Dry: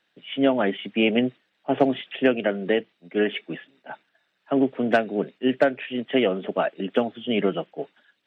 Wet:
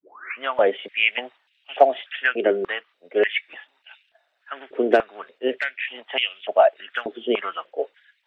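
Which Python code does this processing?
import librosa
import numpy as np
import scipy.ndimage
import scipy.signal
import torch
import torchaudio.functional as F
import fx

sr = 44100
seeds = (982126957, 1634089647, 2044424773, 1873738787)

y = fx.tape_start_head(x, sr, length_s=0.43)
y = fx.filter_held_highpass(y, sr, hz=3.4, low_hz=380.0, high_hz=2700.0)
y = y * 10.0 ** (-1.0 / 20.0)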